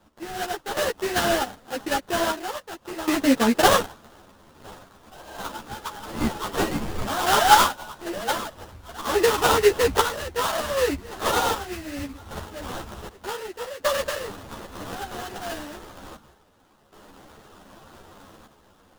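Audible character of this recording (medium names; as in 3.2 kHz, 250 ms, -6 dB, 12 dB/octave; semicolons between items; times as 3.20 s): aliases and images of a low sample rate 2.3 kHz, jitter 20%; random-step tremolo 1.3 Hz, depth 85%; a shimmering, thickened sound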